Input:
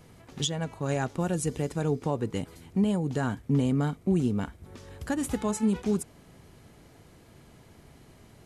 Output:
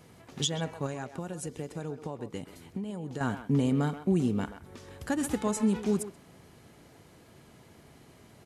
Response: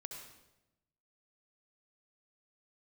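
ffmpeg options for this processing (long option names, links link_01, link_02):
-filter_complex "[0:a]highpass=frequency=110:poles=1,asettb=1/sr,asplit=3[link_01][link_02][link_03];[link_01]atrim=end=0.864[link_04];[link_02]atrim=start=0.86:end=3.21,asetpts=PTS-STARTPTS,afade=type=in:duration=0.004:curve=qsin,afade=type=out:start_time=2.346:duration=0.004:curve=qsin,acompressor=threshold=-34dB:ratio=6[link_05];[link_03]atrim=start=3.206[link_06];[link_04][link_05]acrossfade=duration=0.004:curve1=hsin:curve2=qsin[link_07];[link_07][link_06]acrossfade=duration=0.004:curve1=qsin:curve2=hsin,asplit=2[link_08][link_09];[link_09]adelay=130,highpass=300,lowpass=3400,asoftclip=type=hard:threshold=-24dB,volume=-10dB[link_10];[link_08][link_10]amix=inputs=2:normalize=0"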